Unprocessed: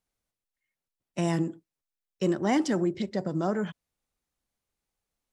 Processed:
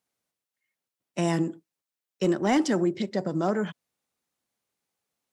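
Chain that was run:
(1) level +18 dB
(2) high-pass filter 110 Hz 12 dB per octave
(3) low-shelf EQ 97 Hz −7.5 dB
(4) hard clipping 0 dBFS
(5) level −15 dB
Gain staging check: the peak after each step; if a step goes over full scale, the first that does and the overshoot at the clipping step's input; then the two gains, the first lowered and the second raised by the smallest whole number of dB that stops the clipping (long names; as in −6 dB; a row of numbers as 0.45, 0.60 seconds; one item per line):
+3.5, +4.5, +4.0, 0.0, −15.0 dBFS
step 1, 4.0 dB
step 1 +14 dB, step 5 −11 dB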